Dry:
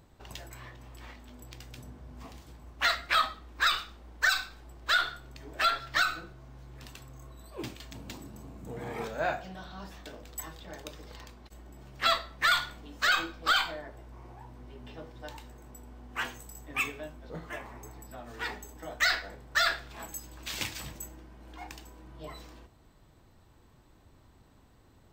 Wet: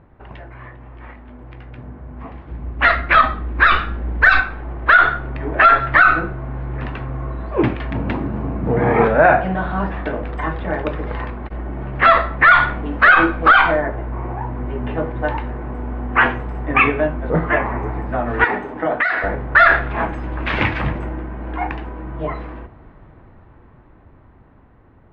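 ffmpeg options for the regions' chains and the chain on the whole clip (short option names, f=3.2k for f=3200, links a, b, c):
-filter_complex "[0:a]asettb=1/sr,asplit=3[a][b][c];[a]atrim=end=2.514[d];[b]atrim=start=2.51:end=4.4,asetpts=PTS-STARTPTS,afade=t=in:d=0.004:c=qsin,afade=t=out:st=1.886:d=0.004:c=qsin,equalizer=f=1.1k:w=0.44:g=-8.5,bandreject=f=153.2:t=h:w=4,bandreject=f=306.4:t=h:w=4,bandreject=f=459.6:t=h:w=4,bandreject=f=612.8:t=h:w=4,bandreject=f=766:t=h:w=4,bandreject=f=919.2:t=h:w=4,bandreject=f=1.0724k:t=h:w=4,bandreject=f=1.2256k:t=h:w=4,bandreject=f=1.3788k:t=h:w=4,bandreject=f=1.532k:t=h:w=4,bandreject=f=1.6852k:t=h:w=4,bandreject=f=1.8384k:t=h:w=4,acontrast=85[e];[c]atrim=start=4.396[f];[d][e]acrossfade=d=0.004:c1=hsin:c2=qsin[g];[g][f]acrossfade=d=0.004:c1=qsin:c2=hsin,asettb=1/sr,asplit=3[h][i][j];[h]atrim=end=18.444[k];[i]atrim=start=18.44:end=19.24,asetpts=PTS-STARTPTS,afade=t=in:d=0.004:c=qsin,afade=t=out:st=0.796:d=0.004:c=qsin,highpass=180,acompressor=threshold=-37dB:ratio=6:attack=3.2:release=140:knee=1:detection=peak[l];[j]atrim=start=19.236[m];[k][l]acrossfade=d=0.004:c1=hsin:c2=qsin[n];[n][m]acrossfade=d=0.004:c1=qsin:c2=hsin,lowpass=f=2.1k:w=0.5412,lowpass=f=2.1k:w=1.3066,dynaudnorm=f=550:g=13:m=15dB,alimiter=level_in=11dB:limit=-1dB:release=50:level=0:latency=1,volume=-1dB"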